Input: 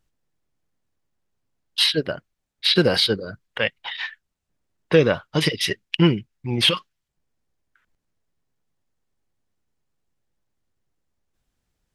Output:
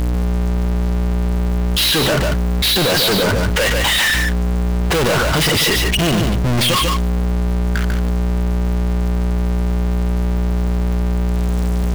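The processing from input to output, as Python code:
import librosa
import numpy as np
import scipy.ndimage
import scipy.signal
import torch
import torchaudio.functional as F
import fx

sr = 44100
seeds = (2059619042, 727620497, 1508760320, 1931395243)

p1 = fx.add_hum(x, sr, base_hz=60, snr_db=29)
p2 = fx.power_curve(p1, sr, exponent=0.35)
p3 = 10.0 ** (-17.5 / 20.0) * np.tanh(p2 / 10.0 ** (-17.5 / 20.0))
p4 = p3 + fx.echo_single(p3, sr, ms=145, db=-5.5, dry=0)
p5 = fx.env_flatten(p4, sr, amount_pct=70)
y = p5 * 10.0 ** (1.5 / 20.0)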